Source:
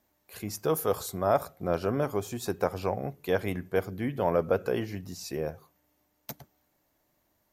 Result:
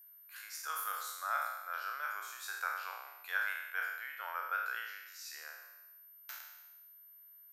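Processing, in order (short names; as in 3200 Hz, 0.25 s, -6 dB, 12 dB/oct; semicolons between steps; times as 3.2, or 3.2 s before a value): spectral trails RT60 1.04 s; whine 13000 Hz -45 dBFS; ladder high-pass 1300 Hz, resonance 65%; gain +1 dB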